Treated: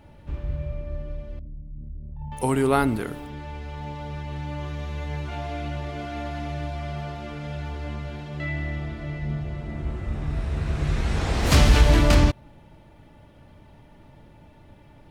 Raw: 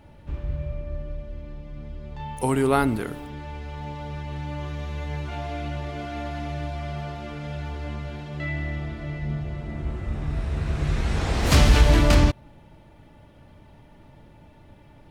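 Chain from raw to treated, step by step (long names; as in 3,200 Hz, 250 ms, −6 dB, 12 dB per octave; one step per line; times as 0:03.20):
0:01.39–0:02.32: spectral envelope exaggerated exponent 2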